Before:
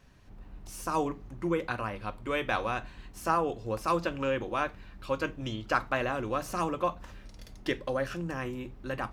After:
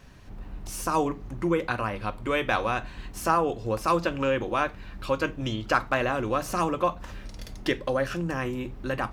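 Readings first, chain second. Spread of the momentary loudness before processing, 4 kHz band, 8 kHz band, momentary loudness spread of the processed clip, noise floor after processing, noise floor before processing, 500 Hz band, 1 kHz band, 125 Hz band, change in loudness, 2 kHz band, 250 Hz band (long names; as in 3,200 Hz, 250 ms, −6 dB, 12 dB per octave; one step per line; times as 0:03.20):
13 LU, +5.0 dB, +6.5 dB, 13 LU, −43 dBFS, −51 dBFS, +4.5 dB, +4.5 dB, +5.0 dB, +4.5 dB, +4.5 dB, +5.0 dB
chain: in parallel at −1.5 dB: downward compressor, threshold −40 dBFS, peak gain reduction 17.5 dB
on the sum: hard clipping −13 dBFS, distortion −41 dB
level +3 dB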